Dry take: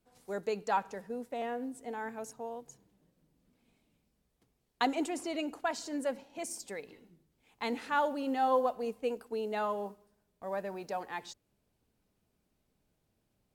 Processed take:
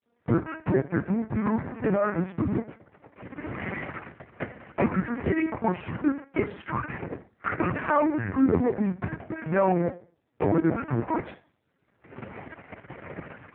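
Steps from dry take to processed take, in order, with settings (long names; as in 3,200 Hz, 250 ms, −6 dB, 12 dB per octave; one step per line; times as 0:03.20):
pitch shifter gated in a rhythm −6.5 semitones, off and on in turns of 430 ms
camcorder AGC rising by 25 dB per second
high-pass filter 120 Hz 12 dB per octave
leveller curve on the samples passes 5
downward compressor 4 to 1, threshold −28 dBFS, peak gain reduction 13.5 dB
on a send at −7 dB: convolution reverb RT60 0.50 s, pre-delay 3 ms
on the sum: single-sideband voice off tune −270 Hz 280–2,500 Hz
linear-prediction vocoder at 8 kHz pitch kept
level +6.5 dB
AMR narrowband 7.4 kbit/s 8,000 Hz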